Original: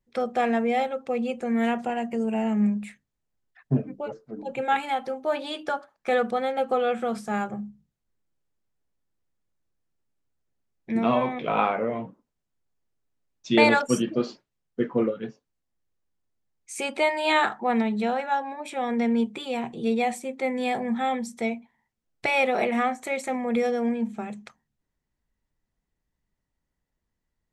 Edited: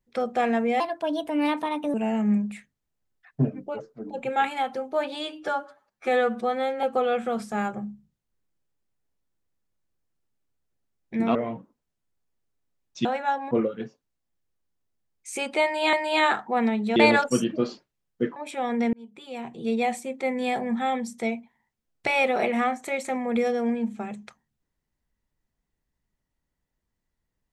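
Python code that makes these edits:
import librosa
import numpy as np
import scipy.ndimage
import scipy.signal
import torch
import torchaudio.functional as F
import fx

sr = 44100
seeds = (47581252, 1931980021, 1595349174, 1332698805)

y = fx.edit(x, sr, fx.speed_span(start_s=0.8, length_s=1.46, speed=1.28),
    fx.stretch_span(start_s=5.47, length_s=1.12, factor=1.5),
    fx.cut(start_s=11.11, length_s=0.73),
    fx.swap(start_s=13.54, length_s=1.4, other_s=18.09, other_length_s=0.46),
    fx.repeat(start_s=17.06, length_s=0.3, count=2),
    fx.fade_in_span(start_s=19.12, length_s=0.92), tone=tone)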